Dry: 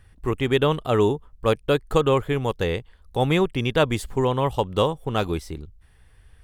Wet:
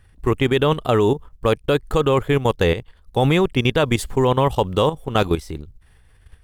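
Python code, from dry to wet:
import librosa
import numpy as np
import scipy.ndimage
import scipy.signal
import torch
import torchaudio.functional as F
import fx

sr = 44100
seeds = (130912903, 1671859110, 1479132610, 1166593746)

y = fx.level_steps(x, sr, step_db=12)
y = fx.quant_float(y, sr, bits=6)
y = y * 10.0 ** (8.5 / 20.0)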